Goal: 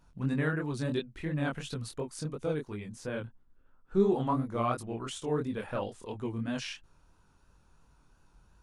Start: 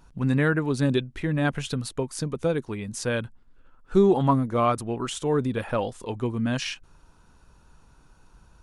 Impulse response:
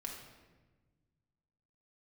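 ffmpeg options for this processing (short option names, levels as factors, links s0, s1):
-filter_complex "[0:a]asettb=1/sr,asplit=3[s0][s1][s2];[s0]atrim=end=2.874[s3];[s1]atrim=start=2.87:end=4,asetpts=PTS-STARTPTS,afade=t=in:d=0.004:c=qsin,afade=t=out:st=1.126:d=0.004:c=qsin,highshelf=f=2300:g=-9[s4];[s2]atrim=start=3.996[s5];[s3][s4]acrossfade=d=0.004:c1=hsin:c2=qsin[s6];[s6][s5]acrossfade=d=0.004:c1=qsin:c2=hsin,flanger=delay=19.5:depth=7.1:speed=2.9,volume=0.562"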